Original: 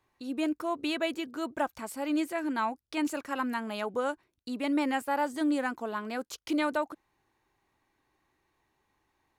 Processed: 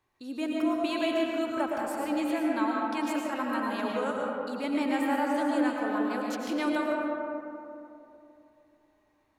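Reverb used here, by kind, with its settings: digital reverb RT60 2.9 s, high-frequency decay 0.35×, pre-delay 70 ms, DRR -2.5 dB; gain -2.5 dB

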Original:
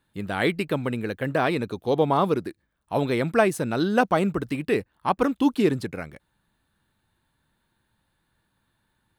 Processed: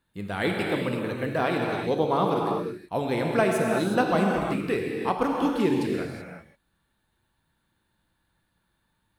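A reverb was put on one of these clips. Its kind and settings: non-linear reverb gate 0.4 s flat, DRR 0 dB; gain -4 dB

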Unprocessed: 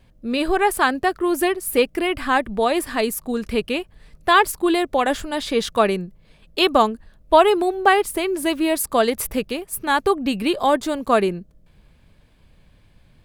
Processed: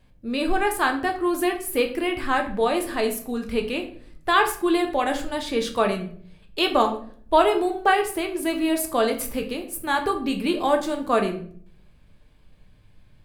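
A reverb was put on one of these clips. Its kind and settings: shoebox room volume 63 m³, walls mixed, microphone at 0.45 m; gain -5 dB

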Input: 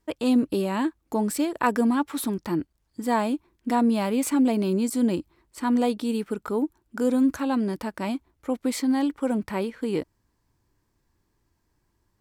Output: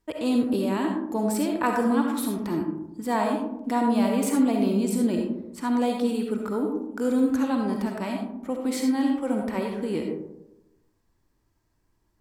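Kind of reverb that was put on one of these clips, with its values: digital reverb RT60 0.91 s, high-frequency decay 0.3×, pre-delay 25 ms, DRR 1.5 dB; gain -2.5 dB

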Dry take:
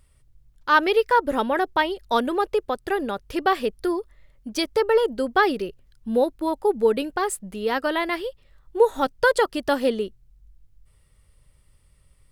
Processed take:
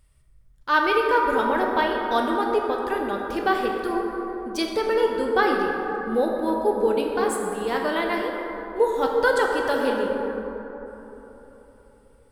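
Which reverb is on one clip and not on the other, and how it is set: plate-style reverb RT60 3.8 s, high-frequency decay 0.35×, DRR -0.5 dB; gain -3.5 dB

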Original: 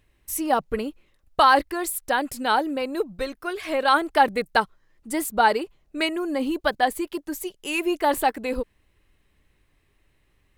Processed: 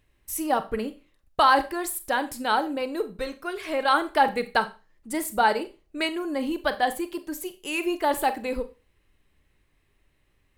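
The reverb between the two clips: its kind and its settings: Schroeder reverb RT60 0.31 s, combs from 29 ms, DRR 11 dB; gain -2.5 dB

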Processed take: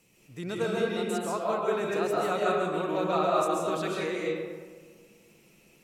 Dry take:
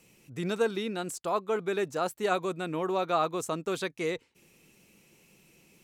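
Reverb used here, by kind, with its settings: digital reverb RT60 1.6 s, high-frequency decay 0.45×, pre-delay 0.1 s, DRR -4.5 dB; gain -4 dB

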